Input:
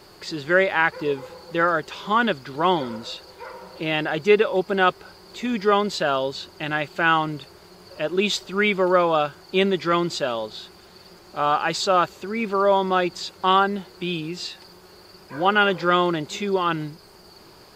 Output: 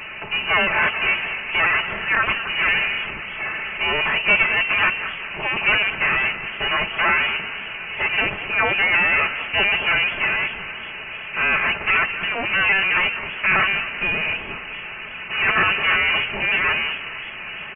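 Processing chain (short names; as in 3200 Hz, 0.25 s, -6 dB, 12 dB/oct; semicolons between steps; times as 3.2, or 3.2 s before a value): cycle switcher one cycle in 2, inverted; notches 60/120/180 Hz; comb 4.4 ms, depth 76%; power-law curve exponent 0.5; frequency-shifting echo 0.2 s, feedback 47%, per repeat -36 Hz, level -13 dB; inverted band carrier 2900 Hz; warbling echo 0.255 s, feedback 79%, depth 195 cents, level -22 dB; gain -8 dB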